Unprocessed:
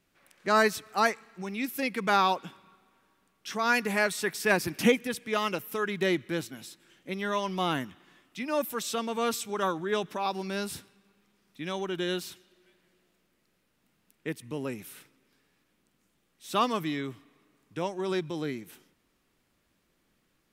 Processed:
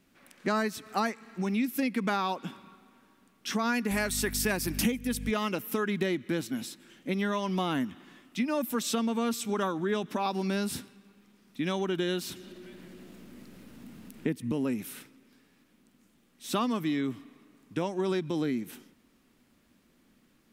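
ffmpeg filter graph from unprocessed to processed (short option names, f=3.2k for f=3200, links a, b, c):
-filter_complex "[0:a]asettb=1/sr,asplit=3[a][b][c];[a]atrim=end=3.914[d];[b]atrim=start=3.91:end=5.31,asetpts=PTS-STARTPTS,afade=t=in:d=0.004:c=qsin,afade=t=out:st=1.396:d=0.004:c=qsin,aemphasis=mode=production:type=cd,aeval=exprs='val(0)+0.0141*(sin(2*PI*50*n/s)+sin(2*PI*2*50*n/s)/2+sin(2*PI*3*50*n/s)/3+sin(2*PI*4*50*n/s)/4+sin(2*PI*5*50*n/s)/5)':c=same[e];[c]atrim=start=5.306[f];[d][e]acrossfade=d=0.004:c1=hsin:c2=qsin[g];[g][f]acrossfade=d=0.004:c1=qsin:c2=hsin,asettb=1/sr,asplit=3[h][i][j];[h]atrim=end=12.294[k];[i]atrim=start=12.29:end=14.52,asetpts=PTS-STARTPTS,afade=t=in:d=0.004:c=qsin,afade=t=out:st=2.226:d=0.004:c=qsin,lowshelf=f=470:g=7.5,acompressor=mode=upward:threshold=-44dB:ratio=2.5:attack=3.2:release=140:knee=2.83:detection=peak[l];[j]atrim=start=14.516[m];[k][l]acrossfade=d=0.004:c1=hsin:c2=qsin[n];[n][m]acrossfade=d=0.004:c1=qsin:c2=hsin,equalizer=f=240:w=2.4:g=10.5,acompressor=threshold=-30dB:ratio=6,volume=4dB"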